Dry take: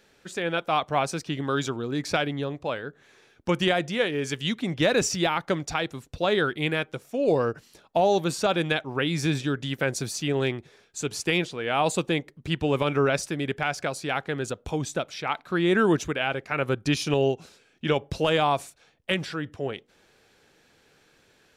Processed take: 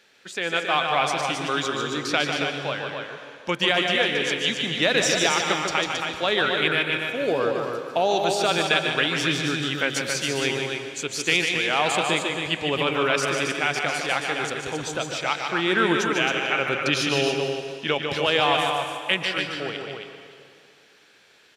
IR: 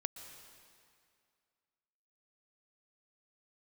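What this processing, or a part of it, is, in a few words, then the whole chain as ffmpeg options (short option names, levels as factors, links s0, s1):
stadium PA: -filter_complex "[0:a]highpass=f=240:p=1,equalizer=f=2900:t=o:w=2.5:g=7.5,aecho=1:1:148.7|271.1:0.501|0.501[s0];[1:a]atrim=start_sample=2205[s1];[s0][s1]afir=irnorm=-1:irlink=0"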